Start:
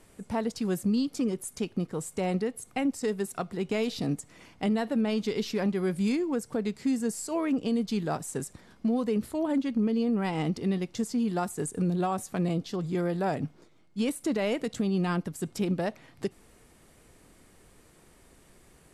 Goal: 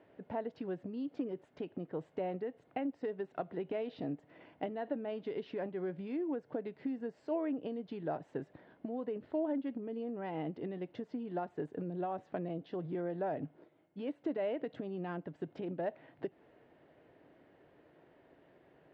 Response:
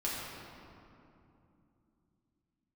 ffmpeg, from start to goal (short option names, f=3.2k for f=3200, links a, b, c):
-af "acompressor=threshold=-31dB:ratio=6,highpass=160,equalizer=f=210:t=q:w=4:g=-9,equalizer=f=300:t=q:w=4:g=3,equalizer=f=620:t=q:w=4:g=6,equalizer=f=1.2k:t=q:w=4:g=-8,equalizer=f=2.3k:t=q:w=4:g=-7,lowpass=f=2.6k:w=0.5412,lowpass=f=2.6k:w=1.3066,volume=-2.5dB"